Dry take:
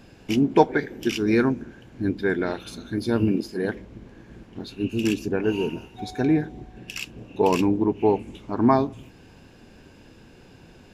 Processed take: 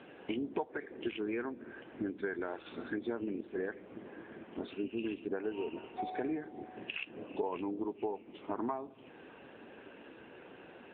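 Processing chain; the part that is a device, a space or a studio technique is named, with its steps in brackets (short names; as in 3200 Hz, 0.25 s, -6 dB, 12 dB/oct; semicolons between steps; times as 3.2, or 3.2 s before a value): voicemail (BPF 380–2700 Hz; compressor 8:1, threshold -37 dBFS, peak gain reduction 24.5 dB; gain +3.5 dB; AMR-NB 7.95 kbps 8000 Hz)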